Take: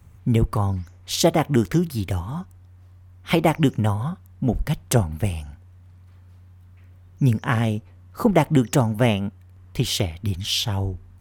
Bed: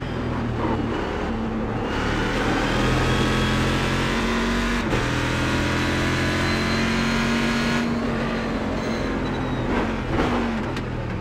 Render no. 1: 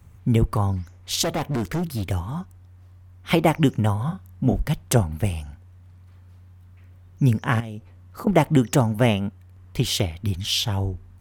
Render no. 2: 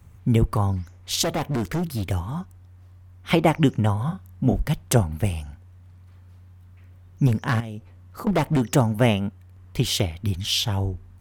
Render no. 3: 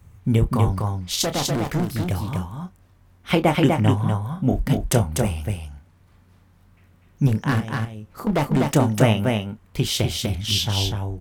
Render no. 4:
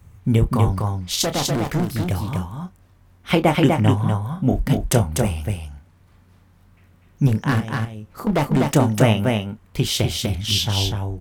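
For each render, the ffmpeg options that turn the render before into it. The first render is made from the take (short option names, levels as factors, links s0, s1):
-filter_complex "[0:a]asettb=1/sr,asplit=3[s0][s1][s2];[s0]atrim=end=1.234[s3];[s1]atrim=start=1.23:end=2.05,asetpts=PTS-STARTPTS,afade=t=in:d=0.004:c=qsin,afade=t=out:st=0.816:d=0.004:c=qsin,asoftclip=type=hard:threshold=0.0841[s4];[s2]atrim=start=2.046[s5];[s3][s4]acrossfade=d=0.004:c1=hsin:c2=qsin[s6];[s6][s5]acrossfade=d=0.004:c1=qsin:c2=hsin,asettb=1/sr,asplit=3[s7][s8][s9];[s7]atrim=end=4.054[s10];[s8]atrim=start=4.05:end=4.6,asetpts=PTS-STARTPTS,afade=t=in:d=0.004:c=qsin,afade=t=out:st=0.546:d=0.004:c=qsin,asplit=2[s11][s12];[s12]adelay=31,volume=0.531[s13];[s11][s13]amix=inputs=2:normalize=0,atrim=end_sample=24255[s14];[s9]atrim=start=4.596[s15];[s10][s14]acrossfade=d=0.004:c1=hsin:c2=qsin[s16];[s16][s15]acrossfade=d=0.004:c1=qsin:c2=hsin,asettb=1/sr,asplit=3[s17][s18][s19];[s17]atrim=end=7.604[s20];[s18]atrim=start=7.6:end=8.27,asetpts=PTS-STARTPTS,afade=t=in:d=0.004:c=qsin,afade=t=out:st=0.666:d=0.004:c=qsin,acompressor=threshold=0.0316:ratio=10:attack=3.2:release=140:knee=1:detection=peak[s21];[s19]atrim=start=8.266[s22];[s20][s21]acrossfade=d=0.004:c1=hsin:c2=qsin[s23];[s23][s22]acrossfade=d=0.004:c1=qsin:c2=hsin"
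-filter_complex "[0:a]asettb=1/sr,asplit=3[s0][s1][s2];[s0]atrim=end=3.314[s3];[s1]atrim=start=3.31:end=3.97,asetpts=PTS-STARTPTS,afade=t=in:d=0.004:c=qsin,afade=t=out:st=0.656:d=0.004:c=qsin,equalizer=f=15000:w=0.58:g=-7[s4];[s2]atrim=start=3.966[s5];[s3][s4]acrossfade=d=0.004:c1=hsin:c2=qsin[s6];[s6][s5]acrossfade=d=0.004:c1=qsin:c2=hsin,asettb=1/sr,asplit=3[s7][s8][s9];[s7]atrim=end=7.274[s10];[s8]atrim=start=7.27:end=8.75,asetpts=PTS-STARTPTS,afade=t=in:d=0.004:c=qsin,afade=t=out:st=1.476:d=0.004:c=qsin,asoftclip=type=hard:threshold=0.15[s11];[s9]atrim=start=8.746[s12];[s10][s11]acrossfade=d=0.004:c1=hsin:c2=qsin[s13];[s13][s12]acrossfade=d=0.004:c1=qsin:c2=hsin"
-filter_complex "[0:a]asplit=2[s0][s1];[s1]adelay=28,volume=0.316[s2];[s0][s2]amix=inputs=2:normalize=0,asplit=2[s3][s4];[s4]aecho=0:1:247:0.668[s5];[s3][s5]amix=inputs=2:normalize=0"
-af "volume=1.19,alimiter=limit=0.708:level=0:latency=1"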